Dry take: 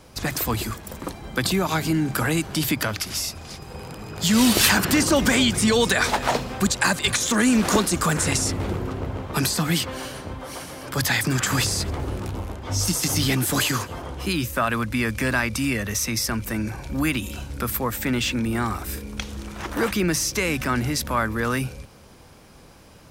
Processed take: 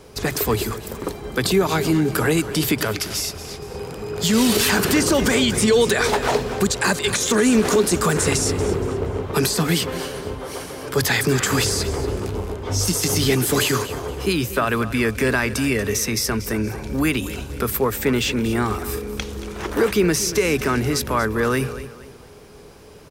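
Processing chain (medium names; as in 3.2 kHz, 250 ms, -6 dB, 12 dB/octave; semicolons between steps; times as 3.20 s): peaking EQ 420 Hz +14.5 dB 0.25 oct; peak limiter -10.5 dBFS, peak gain reduction 8.5 dB; feedback delay 235 ms, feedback 34%, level -14.5 dB; trim +2 dB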